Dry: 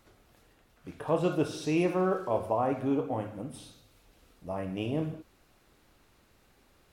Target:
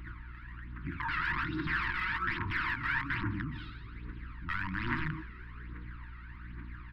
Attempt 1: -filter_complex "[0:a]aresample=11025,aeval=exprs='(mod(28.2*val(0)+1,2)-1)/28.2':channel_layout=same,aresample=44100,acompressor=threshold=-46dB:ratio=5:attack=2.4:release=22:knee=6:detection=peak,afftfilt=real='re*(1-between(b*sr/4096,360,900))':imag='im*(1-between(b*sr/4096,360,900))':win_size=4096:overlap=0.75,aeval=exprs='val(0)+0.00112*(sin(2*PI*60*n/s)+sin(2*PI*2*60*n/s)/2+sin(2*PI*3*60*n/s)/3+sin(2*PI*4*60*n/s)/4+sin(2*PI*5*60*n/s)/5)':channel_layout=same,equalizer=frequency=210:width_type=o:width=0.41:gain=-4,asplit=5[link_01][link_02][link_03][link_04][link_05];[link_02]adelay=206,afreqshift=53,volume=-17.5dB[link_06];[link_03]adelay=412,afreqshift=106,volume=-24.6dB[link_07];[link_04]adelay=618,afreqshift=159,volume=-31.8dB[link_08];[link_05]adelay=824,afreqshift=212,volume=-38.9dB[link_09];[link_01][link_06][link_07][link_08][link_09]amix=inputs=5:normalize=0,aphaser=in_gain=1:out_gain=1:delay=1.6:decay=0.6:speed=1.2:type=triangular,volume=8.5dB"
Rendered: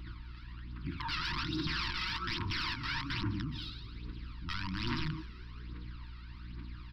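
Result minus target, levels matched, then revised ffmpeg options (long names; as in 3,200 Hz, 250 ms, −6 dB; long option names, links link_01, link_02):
2,000 Hz band −3.5 dB
-filter_complex "[0:a]aresample=11025,aeval=exprs='(mod(28.2*val(0)+1,2)-1)/28.2':channel_layout=same,aresample=44100,acompressor=threshold=-46dB:ratio=5:attack=2.4:release=22:knee=6:detection=peak,afftfilt=real='re*(1-between(b*sr/4096,360,900))':imag='im*(1-between(b*sr/4096,360,900))':win_size=4096:overlap=0.75,aeval=exprs='val(0)+0.00112*(sin(2*PI*60*n/s)+sin(2*PI*2*60*n/s)/2+sin(2*PI*3*60*n/s)/3+sin(2*PI*4*60*n/s)/4+sin(2*PI*5*60*n/s)/5)':channel_layout=same,lowpass=frequency=1800:width_type=q:width=2.9,equalizer=frequency=210:width_type=o:width=0.41:gain=-4,asplit=5[link_01][link_02][link_03][link_04][link_05];[link_02]adelay=206,afreqshift=53,volume=-17.5dB[link_06];[link_03]adelay=412,afreqshift=106,volume=-24.6dB[link_07];[link_04]adelay=618,afreqshift=159,volume=-31.8dB[link_08];[link_05]adelay=824,afreqshift=212,volume=-38.9dB[link_09];[link_01][link_06][link_07][link_08][link_09]amix=inputs=5:normalize=0,aphaser=in_gain=1:out_gain=1:delay=1.6:decay=0.6:speed=1.2:type=triangular,volume=8.5dB"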